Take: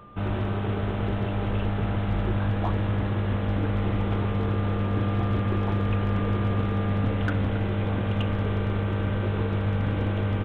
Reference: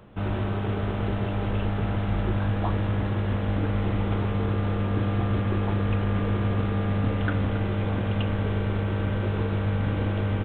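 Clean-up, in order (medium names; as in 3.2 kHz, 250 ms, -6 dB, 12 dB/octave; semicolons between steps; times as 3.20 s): clip repair -17 dBFS; band-stop 1.2 kHz, Q 30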